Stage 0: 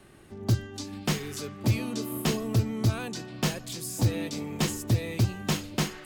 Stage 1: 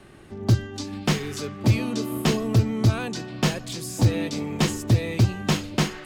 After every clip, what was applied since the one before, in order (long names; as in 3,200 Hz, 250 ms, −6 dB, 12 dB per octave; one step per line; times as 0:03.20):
high-shelf EQ 9,700 Hz −11.5 dB
level +5.5 dB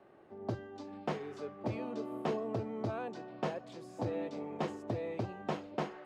resonant band-pass 640 Hz, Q 1.4
level −4.5 dB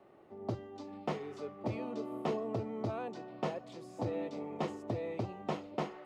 notch filter 1,600 Hz, Q 7.6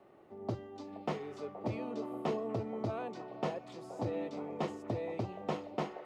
echo through a band-pass that steps 473 ms, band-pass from 620 Hz, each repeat 0.7 octaves, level −10 dB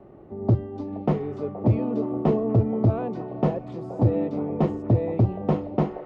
spectral tilt −4.5 dB per octave
level +6.5 dB